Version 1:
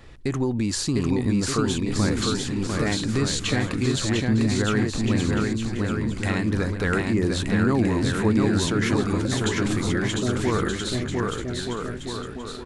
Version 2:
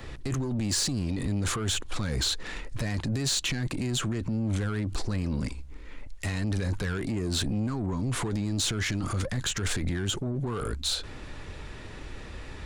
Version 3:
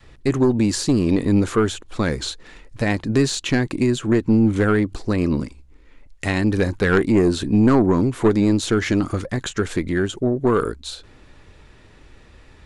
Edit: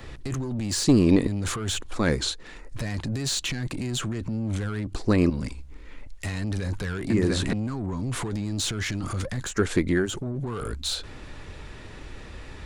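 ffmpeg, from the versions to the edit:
ffmpeg -i take0.wav -i take1.wav -i take2.wav -filter_complex "[2:a]asplit=4[link_01][link_02][link_03][link_04];[1:a]asplit=6[link_05][link_06][link_07][link_08][link_09][link_10];[link_05]atrim=end=0.842[link_11];[link_01]atrim=start=0.838:end=1.272[link_12];[link_06]atrim=start=1.268:end=2.1[link_13];[link_02]atrim=start=1.86:end=2.79[link_14];[link_07]atrim=start=2.55:end=4.872[link_15];[link_03]atrim=start=4.868:end=5.302[link_16];[link_08]atrim=start=5.298:end=7.102[link_17];[0:a]atrim=start=7.098:end=7.532[link_18];[link_09]atrim=start=7.528:end=9.64[link_19];[link_04]atrim=start=9.4:end=10.16[link_20];[link_10]atrim=start=9.92[link_21];[link_11][link_12]acrossfade=duration=0.004:curve1=hsin:curve2=hsin[link_22];[link_22][link_13]acrossfade=duration=0.004:curve1=hsin:curve2=hsin[link_23];[link_23][link_14]acrossfade=duration=0.24:curve1=tri:curve2=tri[link_24];[link_24][link_15]acrossfade=duration=0.24:curve1=tri:curve2=tri[link_25];[link_25][link_16]acrossfade=duration=0.004:curve1=hsin:curve2=hsin[link_26];[link_26][link_17]acrossfade=duration=0.004:curve1=hsin:curve2=hsin[link_27];[link_27][link_18]acrossfade=duration=0.004:curve1=hsin:curve2=hsin[link_28];[link_28][link_19]acrossfade=duration=0.004:curve1=hsin:curve2=hsin[link_29];[link_29][link_20]acrossfade=duration=0.24:curve1=tri:curve2=tri[link_30];[link_30][link_21]acrossfade=duration=0.24:curve1=tri:curve2=tri" out.wav

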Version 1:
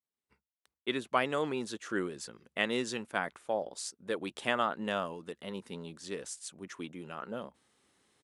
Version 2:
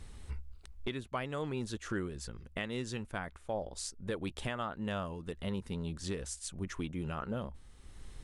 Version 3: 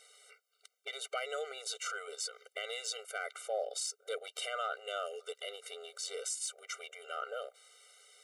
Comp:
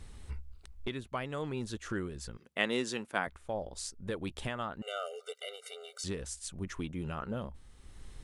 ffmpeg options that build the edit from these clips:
ffmpeg -i take0.wav -i take1.wav -i take2.wav -filter_complex "[1:a]asplit=3[link_01][link_02][link_03];[link_01]atrim=end=2.372[link_04];[0:a]atrim=start=2.368:end=3.272[link_05];[link_02]atrim=start=3.268:end=4.822[link_06];[2:a]atrim=start=4.818:end=6.042[link_07];[link_03]atrim=start=6.038[link_08];[link_04][link_05]acrossfade=duration=0.004:curve1=hsin:curve2=hsin[link_09];[link_09][link_06]acrossfade=duration=0.004:curve1=hsin:curve2=hsin[link_10];[link_10][link_07]acrossfade=duration=0.004:curve1=hsin:curve2=hsin[link_11];[link_11][link_08]acrossfade=duration=0.004:curve1=hsin:curve2=hsin" out.wav

